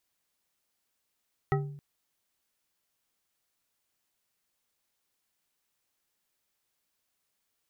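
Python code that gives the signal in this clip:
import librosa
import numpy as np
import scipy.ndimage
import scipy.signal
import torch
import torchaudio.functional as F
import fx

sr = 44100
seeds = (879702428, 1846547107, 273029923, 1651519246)

y = fx.strike_glass(sr, length_s=0.27, level_db=-23.5, body='bar', hz=144.0, decay_s=0.75, tilt_db=2.0, modes=5)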